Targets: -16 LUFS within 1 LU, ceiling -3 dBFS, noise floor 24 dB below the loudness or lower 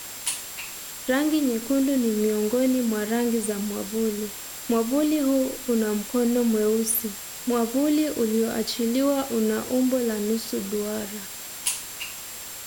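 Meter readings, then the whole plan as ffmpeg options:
steady tone 7.5 kHz; tone level -42 dBFS; noise floor -37 dBFS; noise floor target -49 dBFS; loudness -25.0 LUFS; peak level -9.0 dBFS; loudness target -16.0 LUFS
-> -af "bandreject=f=7500:w=30"
-af "afftdn=nr=12:nf=-37"
-af "volume=2.82,alimiter=limit=0.708:level=0:latency=1"

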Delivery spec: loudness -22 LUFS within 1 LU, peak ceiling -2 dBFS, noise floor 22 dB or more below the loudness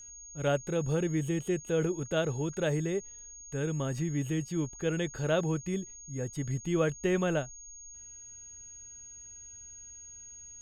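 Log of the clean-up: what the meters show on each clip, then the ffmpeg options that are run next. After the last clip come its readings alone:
steady tone 6.6 kHz; tone level -46 dBFS; loudness -32.0 LUFS; peak level -15.5 dBFS; loudness target -22.0 LUFS
-> -af "bandreject=f=6600:w=30"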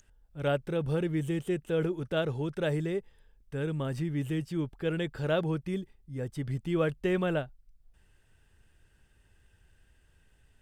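steady tone not found; loudness -32.0 LUFS; peak level -16.0 dBFS; loudness target -22.0 LUFS
-> -af "volume=3.16"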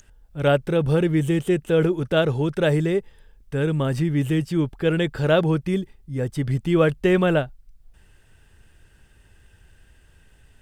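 loudness -22.0 LUFS; peak level -6.0 dBFS; noise floor -56 dBFS

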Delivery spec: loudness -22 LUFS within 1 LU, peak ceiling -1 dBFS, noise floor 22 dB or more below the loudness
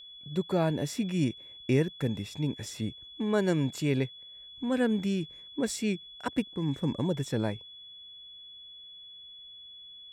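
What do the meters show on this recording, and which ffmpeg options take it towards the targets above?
steady tone 3.4 kHz; tone level -46 dBFS; loudness -31.0 LUFS; peak level -14.0 dBFS; loudness target -22.0 LUFS
-> -af "bandreject=f=3400:w=30"
-af "volume=2.82"

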